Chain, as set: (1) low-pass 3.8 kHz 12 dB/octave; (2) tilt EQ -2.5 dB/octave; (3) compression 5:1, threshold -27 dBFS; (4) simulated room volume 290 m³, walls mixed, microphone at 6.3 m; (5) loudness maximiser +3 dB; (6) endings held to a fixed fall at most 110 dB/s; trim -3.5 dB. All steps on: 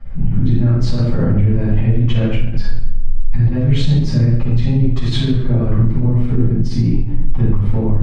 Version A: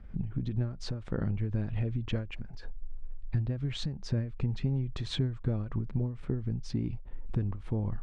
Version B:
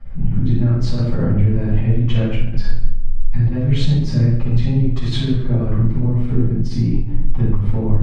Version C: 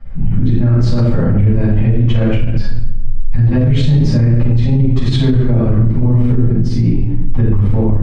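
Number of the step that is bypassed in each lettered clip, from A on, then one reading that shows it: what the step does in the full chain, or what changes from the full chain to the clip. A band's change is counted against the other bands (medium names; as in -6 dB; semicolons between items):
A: 4, momentary loudness spread change +4 LU; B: 5, crest factor change +4.5 dB; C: 3, mean gain reduction 6.0 dB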